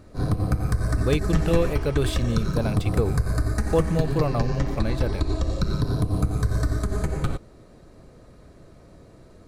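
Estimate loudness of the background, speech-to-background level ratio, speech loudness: -26.5 LUFS, 0.0 dB, -26.5 LUFS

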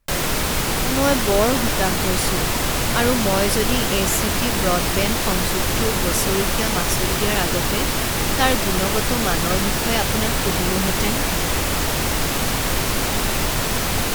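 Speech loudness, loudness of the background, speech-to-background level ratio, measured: -24.0 LUFS, -20.5 LUFS, -3.5 dB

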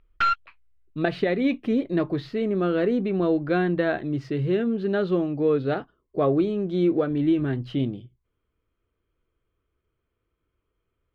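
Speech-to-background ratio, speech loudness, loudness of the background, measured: 0.5 dB, -24.5 LUFS, -25.0 LUFS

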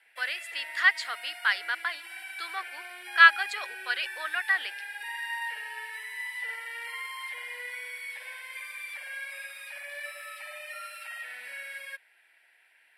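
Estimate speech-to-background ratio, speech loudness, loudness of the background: 12.5 dB, -25.5 LUFS, -38.0 LUFS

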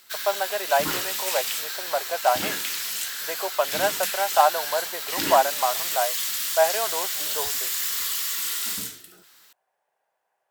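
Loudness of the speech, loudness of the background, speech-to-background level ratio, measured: -25.5 LUFS, -26.0 LUFS, 0.5 dB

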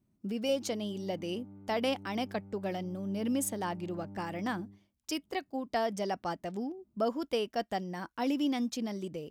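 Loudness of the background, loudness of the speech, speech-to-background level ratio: -50.0 LUFS, -35.0 LUFS, 15.0 dB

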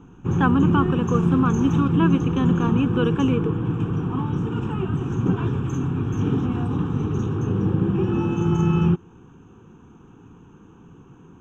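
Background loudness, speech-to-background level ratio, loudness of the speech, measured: -23.0 LUFS, -1.0 dB, -24.0 LUFS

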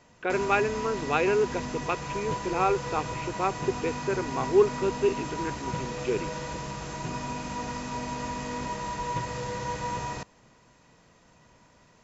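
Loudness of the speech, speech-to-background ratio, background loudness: -28.5 LUFS, 5.5 dB, -34.0 LUFS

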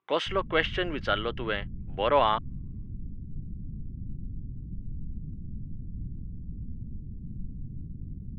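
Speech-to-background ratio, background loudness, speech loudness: 13.5 dB, -41.5 LUFS, -28.0 LUFS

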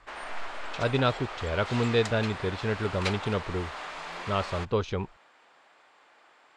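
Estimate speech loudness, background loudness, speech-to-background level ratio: -29.5 LUFS, -37.0 LUFS, 7.5 dB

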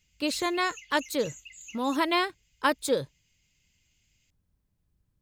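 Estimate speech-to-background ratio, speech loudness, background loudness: 17.0 dB, -28.5 LUFS, -45.5 LUFS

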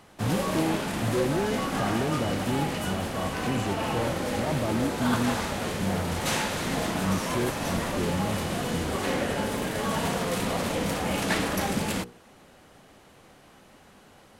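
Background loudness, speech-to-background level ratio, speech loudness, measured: -29.0 LUFS, -3.0 dB, -32.0 LUFS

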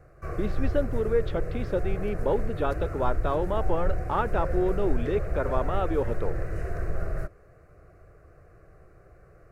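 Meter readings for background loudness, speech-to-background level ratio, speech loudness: -33.5 LUFS, 3.5 dB, -30.0 LUFS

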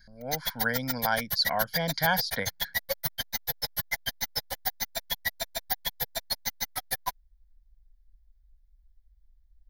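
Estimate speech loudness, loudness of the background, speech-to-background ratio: -30.0 LUFS, -31.5 LUFS, 1.5 dB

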